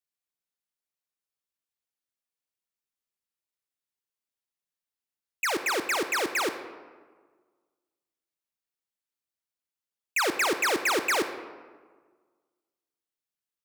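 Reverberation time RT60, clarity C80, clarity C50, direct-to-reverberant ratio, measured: 1.5 s, 11.0 dB, 9.5 dB, 8.5 dB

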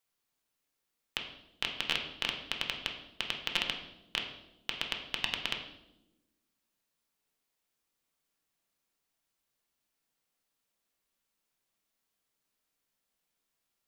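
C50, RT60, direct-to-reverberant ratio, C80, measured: 7.0 dB, 0.95 s, 2.0 dB, 9.5 dB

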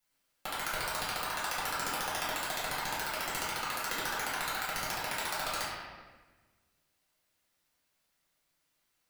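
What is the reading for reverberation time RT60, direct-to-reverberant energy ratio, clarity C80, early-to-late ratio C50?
1.3 s, -9.0 dB, 1.5 dB, -0.5 dB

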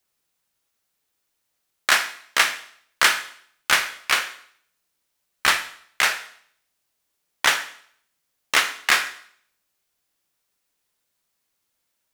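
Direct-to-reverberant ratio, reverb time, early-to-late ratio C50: 8.0 dB, 0.60 s, 12.0 dB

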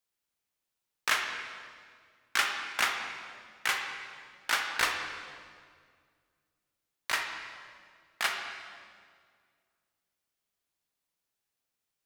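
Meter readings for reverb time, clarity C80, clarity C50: 2.0 s, 5.5 dB, 4.0 dB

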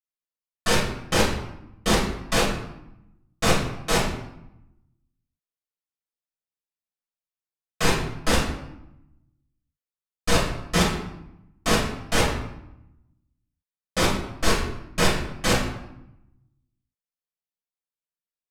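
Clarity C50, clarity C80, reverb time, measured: 4.0 dB, 7.0 dB, 0.85 s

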